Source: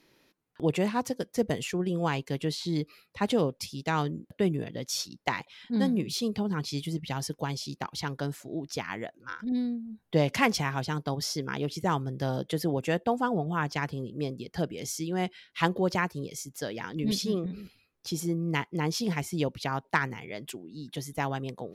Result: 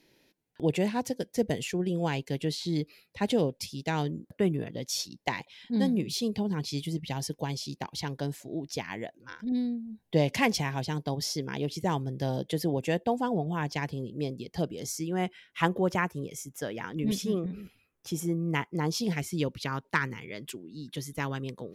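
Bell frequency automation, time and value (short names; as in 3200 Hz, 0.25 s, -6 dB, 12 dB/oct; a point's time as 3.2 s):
bell -12.5 dB 0.41 oct
4.04 s 1200 Hz
4.61 s 7800 Hz
4.79 s 1300 Hz
14.5 s 1300 Hz
15.1 s 4400 Hz
18.64 s 4400 Hz
19.29 s 740 Hz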